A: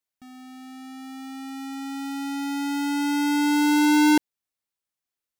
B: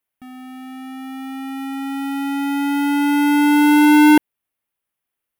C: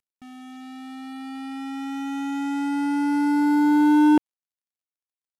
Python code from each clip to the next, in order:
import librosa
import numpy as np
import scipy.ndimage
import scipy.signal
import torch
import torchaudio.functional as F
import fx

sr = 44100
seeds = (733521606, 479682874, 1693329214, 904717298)

y1 = fx.band_shelf(x, sr, hz=5600.0, db=-10.5, octaves=1.3)
y1 = y1 * 10.0 ** (7.5 / 20.0)
y2 = fx.cvsd(y1, sr, bps=64000)
y2 = y2 * 10.0 ** (-5.0 / 20.0)